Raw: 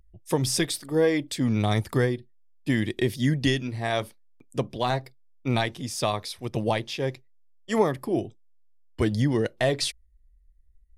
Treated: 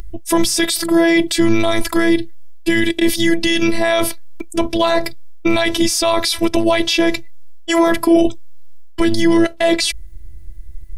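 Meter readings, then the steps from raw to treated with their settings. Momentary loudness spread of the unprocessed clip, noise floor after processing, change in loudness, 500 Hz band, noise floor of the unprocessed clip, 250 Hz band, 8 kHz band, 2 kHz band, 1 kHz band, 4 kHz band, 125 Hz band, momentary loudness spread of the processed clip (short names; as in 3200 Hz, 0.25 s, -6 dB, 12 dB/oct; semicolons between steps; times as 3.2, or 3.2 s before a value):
8 LU, -32 dBFS, +10.5 dB, +9.5 dB, -58 dBFS, +12.5 dB, +12.5 dB, +12.5 dB, +10.0 dB, +12.5 dB, -3.0 dB, 9 LU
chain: dynamic EQ 250 Hz, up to -6 dB, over -35 dBFS, Q 1.1; reverse; compressor 6:1, threshold -34 dBFS, peak gain reduction 15 dB; reverse; robotiser 333 Hz; maximiser +32 dB; gain -1 dB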